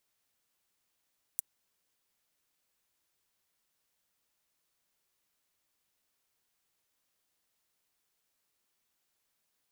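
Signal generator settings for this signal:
closed synth hi-hat, high-pass 8,500 Hz, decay 0.02 s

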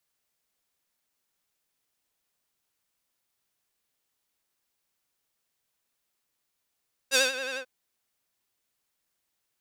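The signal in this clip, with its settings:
subtractive patch with vibrato C5, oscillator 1 square, sub −8.5 dB, filter bandpass, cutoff 1,600 Hz, Q 0.73, filter envelope 2 octaves, attack 43 ms, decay 0.17 s, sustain −16 dB, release 0.08 s, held 0.46 s, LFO 11 Hz, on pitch 66 cents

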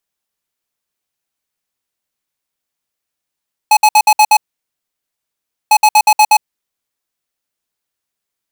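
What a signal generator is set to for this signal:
beeps in groups square 851 Hz, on 0.06 s, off 0.06 s, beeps 6, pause 1.34 s, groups 2, −7 dBFS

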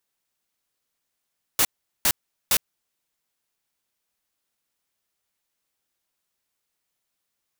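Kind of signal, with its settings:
noise bursts white, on 0.06 s, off 0.40 s, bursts 3, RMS −19 dBFS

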